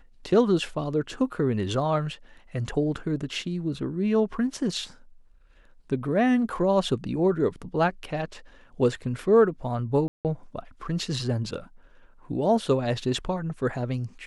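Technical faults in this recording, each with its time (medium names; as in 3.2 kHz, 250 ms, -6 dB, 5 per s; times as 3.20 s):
10.08–10.25 s: dropout 168 ms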